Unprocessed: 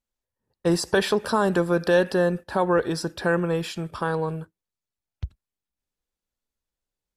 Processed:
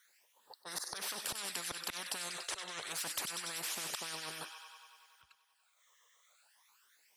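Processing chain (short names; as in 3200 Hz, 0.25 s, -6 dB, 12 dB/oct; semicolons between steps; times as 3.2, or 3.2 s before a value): in parallel at -11 dB: soft clip -25 dBFS, distortion -7 dB; on the sum: LFO high-pass sine 7.4 Hz 860–1800 Hz; auto swell 0.66 s; phaser stages 12, 0.29 Hz, lowest notch 250–2700 Hz; on a send: thin delay 96 ms, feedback 73%, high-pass 2700 Hz, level -16 dB; on the sum: spectral compressor 10:1; gain +1 dB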